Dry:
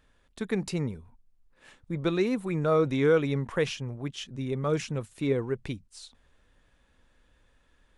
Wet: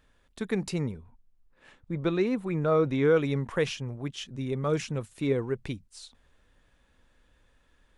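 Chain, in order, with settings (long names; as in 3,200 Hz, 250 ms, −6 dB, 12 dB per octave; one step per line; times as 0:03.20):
0:00.92–0:03.16: high-shelf EQ 5,400 Hz −11 dB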